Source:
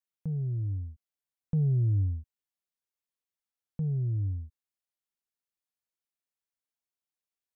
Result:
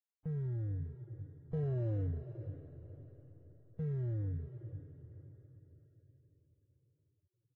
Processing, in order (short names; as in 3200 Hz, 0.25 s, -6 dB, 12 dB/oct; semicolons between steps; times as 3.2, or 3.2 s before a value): tracing distortion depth 0.05 ms; comb 1 ms, depth 83%; sample-and-hold 25×; soft clip -25 dBFS, distortion -12 dB; synth low-pass 580 Hz, resonance Q 4.5; backlash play -47.5 dBFS; diffused feedback echo 0.528 s, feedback 44%, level -11 dB; gain -8.5 dB; Vorbis 16 kbps 22050 Hz